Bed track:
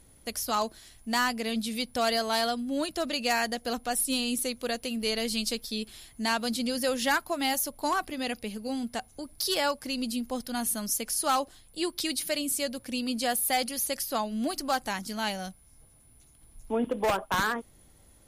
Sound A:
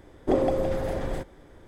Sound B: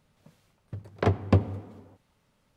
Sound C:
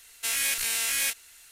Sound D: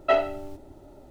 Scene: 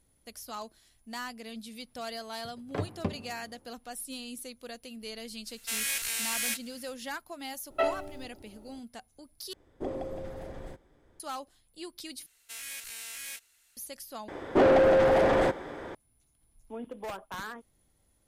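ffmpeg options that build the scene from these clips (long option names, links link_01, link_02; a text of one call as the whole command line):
ffmpeg -i bed.wav -i cue0.wav -i cue1.wav -i cue2.wav -i cue3.wav -filter_complex "[3:a]asplit=2[link_01][link_02];[1:a]asplit=2[link_03][link_04];[0:a]volume=-12dB[link_05];[2:a]flanger=delay=4.5:depth=2.2:regen=-39:speed=1.4:shape=triangular[link_06];[link_04]asplit=2[link_07][link_08];[link_08]highpass=frequency=720:poles=1,volume=28dB,asoftclip=type=tanh:threshold=-9.5dB[link_09];[link_07][link_09]amix=inputs=2:normalize=0,lowpass=frequency=1600:poles=1,volume=-6dB[link_10];[link_05]asplit=4[link_11][link_12][link_13][link_14];[link_11]atrim=end=9.534[link_15];[link_03]atrim=end=1.67,asetpts=PTS-STARTPTS,volume=-12.5dB[link_16];[link_12]atrim=start=11.196:end=12.264[link_17];[link_02]atrim=end=1.51,asetpts=PTS-STARTPTS,volume=-14dB[link_18];[link_13]atrim=start=13.766:end=14.284[link_19];[link_10]atrim=end=1.67,asetpts=PTS-STARTPTS,volume=-3.5dB[link_20];[link_14]atrim=start=15.946[link_21];[link_06]atrim=end=2.56,asetpts=PTS-STARTPTS,volume=-5.5dB,afade=type=in:duration=0.004:curve=hsin,afade=type=out:start_time=2.556:duration=0.004:curve=hsin,adelay=1720[link_22];[link_01]atrim=end=1.51,asetpts=PTS-STARTPTS,volume=-4.5dB,afade=type=in:duration=0.05,afade=type=out:start_time=1.46:duration=0.05,adelay=5440[link_23];[4:a]atrim=end=1.1,asetpts=PTS-STARTPTS,volume=-6.5dB,afade=type=in:duration=0.004:curve=hsin,afade=type=out:start_time=1.096:duration=0.004:curve=hsin,adelay=339570S[link_24];[link_15][link_16]acrossfade=duration=0.004:curve1=hsin:curve2=hsin[link_25];[link_25][link_17]acrossfade=duration=0.004:curve1=hsin:curve2=hsin[link_26];[link_26][link_18]acrossfade=duration=0.004:curve1=hsin:curve2=hsin[link_27];[link_27][link_19]acrossfade=duration=0.004:curve1=hsin:curve2=hsin[link_28];[link_28][link_20]acrossfade=duration=0.004:curve1=hsin:curve2=hsin[link_29];[link_29][link_21]acrossfade=duration=0.004:curve1=hsin:curve2=hsin[link_30];[link_30][link_22][link_23][link_24]amix=inputs=4:normalize=0" out.wav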